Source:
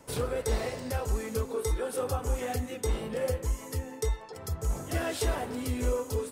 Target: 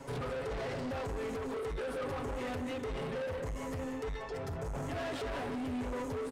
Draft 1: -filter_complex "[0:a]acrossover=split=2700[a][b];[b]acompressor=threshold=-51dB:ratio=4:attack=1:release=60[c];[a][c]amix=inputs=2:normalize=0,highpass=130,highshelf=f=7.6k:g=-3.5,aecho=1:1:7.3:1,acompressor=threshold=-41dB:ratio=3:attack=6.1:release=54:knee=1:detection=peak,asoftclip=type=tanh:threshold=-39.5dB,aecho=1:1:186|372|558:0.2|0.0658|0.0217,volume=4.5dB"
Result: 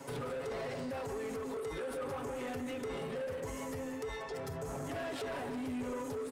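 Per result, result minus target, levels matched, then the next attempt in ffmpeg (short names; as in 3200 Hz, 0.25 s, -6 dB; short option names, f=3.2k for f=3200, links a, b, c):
compressor: peak gain reduction +5.5 dB; 8000 Hz band +4.5 dB; 125 Hz band -3.5 dB
-filter_complex "[0:a]acrossover=split=2700[a][b];[b]acompressor=threshold=-51dB:ratio=4:attack=1:release=60[c];[a][c]amix=inputs=2:normalize=0,highpass=130,highshelf=f=7.6k:g=-3.5,aecho=1:1:7.3:1,acompressor=threshold=-33dB:ratio=3:attack=6.1:release=54:knee=1:detection=peak,asoftclip=type=tanh:threshold=-39.5dB,aecho=1:1:186|372|558:0.2|0.0658|0.0217,volume=4.5dB"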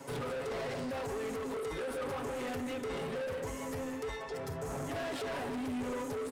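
8000 Hz band +4.5 dB; 125 Hz band -3.5 dB
-filter_complex "[0:a]acrossover=split=2700[a][b];[b]acompressor=threshold=-51dB:ratio=4:attack=1:release=60[c];[a][c]amix=inputs=2:normalize=0,highpass=130,highshelf=f=7.6k:g=-12.5,aecho=1:1:7.3:1,acompressor=threshold=-33dB:ratio=3:attack=6.1:release=54:knee=1:detection=peak,asoftclip=type=tanh:threshold=-39.5dB,aecho=1:1:186|372|558:0.2|0.0658|0.0217,volume=4.5dB"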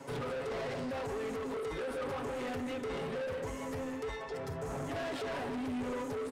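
125 Hz band -3.5 dB
-filter_complex "[0:a]acrossover=split=2700[a][b];[b]acompressor=threshold=-51dB:ratio=4:attack=1:release=60[c];[a][c]amix=inputs=2:normalize=0,highshelf=f=7.6k:g=-12.5,aecho=1:1:7.3:1,acompressor=threshold=-33dB:ratio=3:attack=6.1:release=54:knee=1:detection=peak,asoftclip=type=tanh:threshold=-39.5dB,aecho=1:1:186|372|558:0.2|0.0658|0.0217,volume=4.5dB"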